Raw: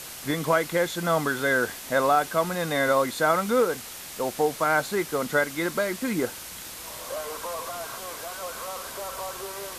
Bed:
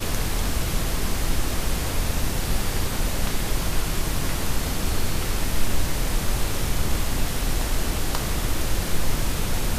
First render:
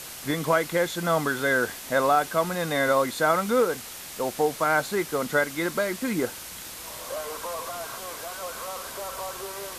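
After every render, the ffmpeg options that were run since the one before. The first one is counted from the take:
-af anull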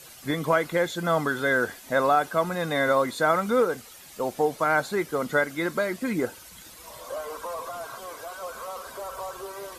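-af "afftdn=nr=11:nf=-40"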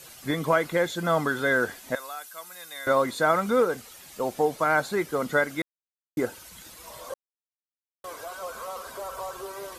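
-filter_complex "[0:a]asettb=1/sr,asplit=3[a][b][c];[a]atrim=end=1.954[d];[b]atrim=start=1.95:end=2.87,asetpts=PTS-STARTPTS,afade=t=in:d=0.004:c=qsin,afade=t=out:st=0.916:d=0.004:c=qsin,aderivative[e];[c]atrim=start=2.866[f];[d][e]acrossfade=d=0.004:c1=hsin:c2=qsin[g];[g][f]acrossfade=d=0.004:c1=qsin:c2=hsin,asplit=5[h][i][j][k][l];[h]atrim=end=5.62,asetpts=PTS-STARTPTS,afade=t=out:st=5.616:d=0.004:c=hsin[m];[i]atrim=start=5.62:end=6.17,asetpts=PTS-STARTPTS,volume=0[n];[j]atrim=start=6.17:end=7.14,asetpts=PTS-STARTPTS,afade=t=in:d=0.004:c=hsin,afade=t=out:st=0.966:d=0.004:c=hsin[o];[k]atrim=start=7.14:end=8.04,asetpts=PTS-STARTPTS,volume=0[p];[l]atrim=start=8.04,asetpts=PTS-STARTPTS,afade=t=in:d=0.004:c=hsin[q];[m][n][o][p][q]concat=n=5:v=0:a=1"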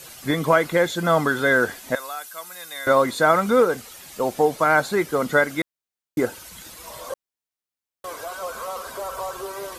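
-af "volume=5dB"

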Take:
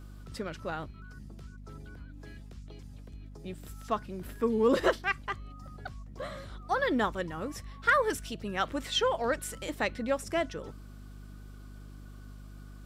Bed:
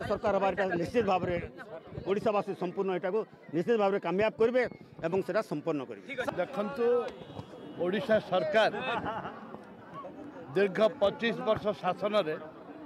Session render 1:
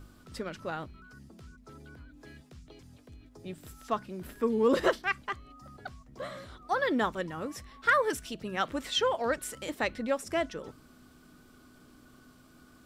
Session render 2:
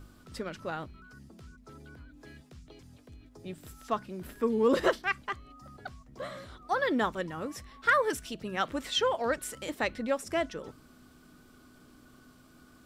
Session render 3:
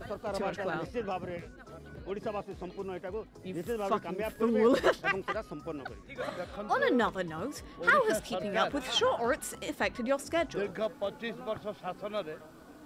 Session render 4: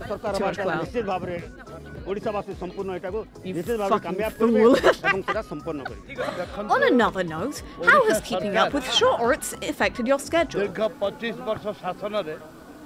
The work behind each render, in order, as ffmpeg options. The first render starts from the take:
-af "bandreject=f=50:t=h:w=4,bandreject=f=100:t=h:w=4,bandreject=f=150:t=h:w=4,bandreject=f=200:t=h:w=4"
-af anull
-filter_complex "[1:a]volume=-7.5dB[a];[0:a][a]amix=inputs=2:normalize=0"
-af "volume=8.5dB"

